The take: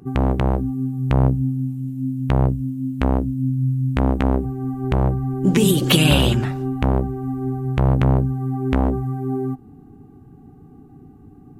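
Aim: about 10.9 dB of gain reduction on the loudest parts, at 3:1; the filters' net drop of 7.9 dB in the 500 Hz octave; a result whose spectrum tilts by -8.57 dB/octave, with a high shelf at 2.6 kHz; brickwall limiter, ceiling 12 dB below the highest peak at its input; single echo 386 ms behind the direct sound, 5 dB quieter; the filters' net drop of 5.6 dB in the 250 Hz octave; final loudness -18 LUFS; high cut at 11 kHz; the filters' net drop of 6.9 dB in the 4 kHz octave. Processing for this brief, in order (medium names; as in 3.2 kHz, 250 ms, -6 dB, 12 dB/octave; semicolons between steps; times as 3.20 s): low-pass 11 kHz; peaking EQ 250 Hz -5.5 dB; peaking EQ 500 Hz -8.5 dB; treble shelf 2.6 kHz -5 dB; peaking EQ 4 kHz -5.5 dB; compression 3:1, threshold -29 dBFS; peak limiter -25.5 dBFS; delay 386 ms -5 dB; trim +15.5 dB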